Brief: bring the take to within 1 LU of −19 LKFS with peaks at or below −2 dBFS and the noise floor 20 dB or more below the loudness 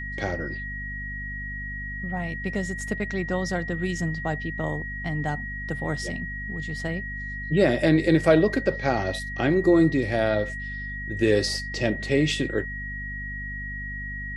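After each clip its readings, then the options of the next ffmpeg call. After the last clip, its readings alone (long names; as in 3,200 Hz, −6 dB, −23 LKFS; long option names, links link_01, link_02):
mains hum 50 Hz; hum harmonics up to 250 Hz; level of the hum −34 dBFS; interfering tone 1,900 Hz; level of the tone −33 dBFS; integrated loudness −26.0 LKFS; sample peak −7.5 dBFS; target loudness −19.0 LKFS
→ -af "bandreject=frequency=50:width_type=h:width=4,bandreject=frequency=100:width_type=h:width=4,bandreject=frequency=150:width_type=h:width=4,bandreject=frequency=200:width_type=h:width=4,bandreject=frequency=250:width_type=h:width=4"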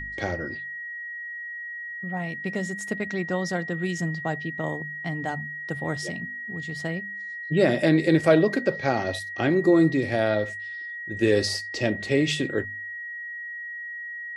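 mains hum none found; interfering tone 1,900 Hz; level of the tone −33 dBFS
→ -af "bandreject=frequency=1900:width=30"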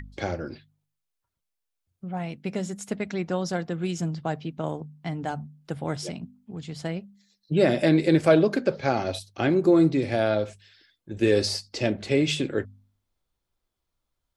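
interfering tone none found; integrated loudness −25.5 LKFS; sample peak −7.0 dBFS; target loudness −19.0 LKFS
→ -af "volume=6.5dB,alimiter=limit=-2dB:level=0:latency=1"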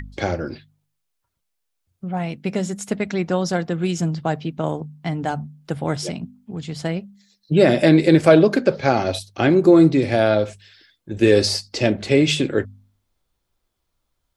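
integrated loudness −19.5 LKFS; sample peak −2.0 dBFS; background noise floor −76 dBFS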